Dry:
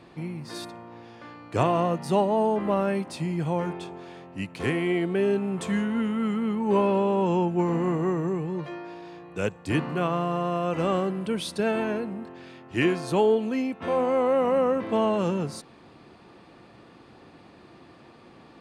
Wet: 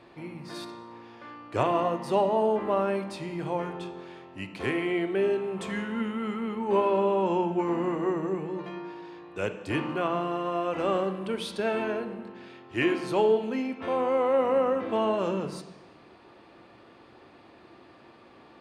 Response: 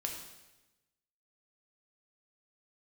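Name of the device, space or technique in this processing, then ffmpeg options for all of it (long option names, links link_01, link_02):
filtered reverb send: -filter_complex "[0:a]asplit=2[link_01][link_02];[link_02]highpass=frequency=170:width=0.5412,highpass=frequency=170:width=1.3066,lowpass=4900[link_03];[1:a]atrim=start_sample=2205[link_04];[link_03][link_04]afir=irnorm=-1:irlink=0,volume=-2dB[link_05];[link_01][link_05]amix=inputs=2:normalize=0,volume=-5.5dB"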